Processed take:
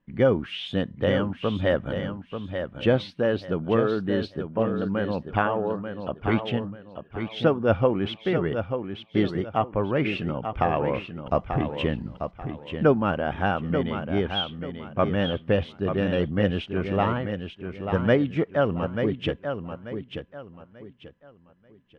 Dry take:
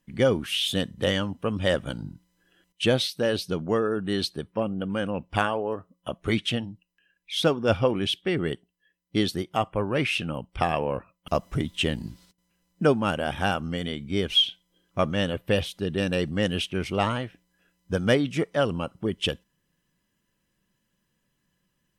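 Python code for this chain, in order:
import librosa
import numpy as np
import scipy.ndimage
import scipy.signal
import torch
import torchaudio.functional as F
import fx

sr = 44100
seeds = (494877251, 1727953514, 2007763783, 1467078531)

p1 = scipy.signal.sosfilt(scipy.signal.butter(2, 1900.0, 'lowpass', fs=sr, output='sos'), x)
p2 = p1 + fx.echo_feedback(p1, sr, ms=888, feedback_pct=29, wet_db=-7.5, dry=0)
y = p2 * librosa.db_to_amplitude(1.5)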